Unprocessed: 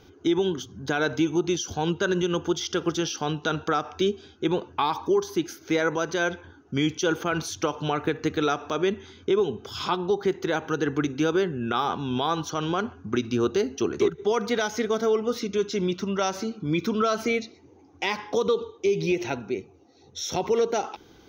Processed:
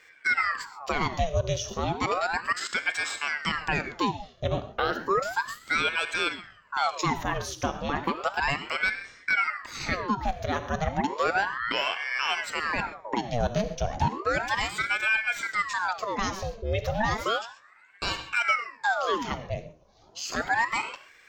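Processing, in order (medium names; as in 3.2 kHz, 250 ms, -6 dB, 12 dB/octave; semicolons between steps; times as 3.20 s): gated-style reverb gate 160 ms flat, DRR 10.5 dB; ring modulator with a swept carrier 1.1 kHz, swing 80%, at 0.33 Hz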